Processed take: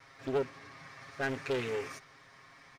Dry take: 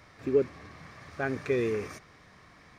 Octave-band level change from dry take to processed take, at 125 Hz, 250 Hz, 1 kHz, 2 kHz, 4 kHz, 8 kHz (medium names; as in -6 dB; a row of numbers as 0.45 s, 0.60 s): -5.0 dB, -7.0 dB, 0.0 dB, -1.0 dB, +4.0 dB, +0.5 dB